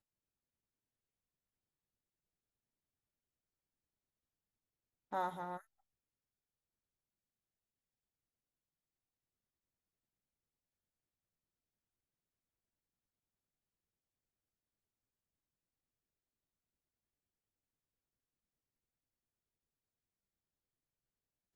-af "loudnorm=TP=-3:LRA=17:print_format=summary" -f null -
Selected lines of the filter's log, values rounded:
Input Integrated:    -42.4 LUFS
Input True Peak:     -26.3 dBTP
Input LRA:             0.0 LU
Input Threshold:     -52.4 LUFS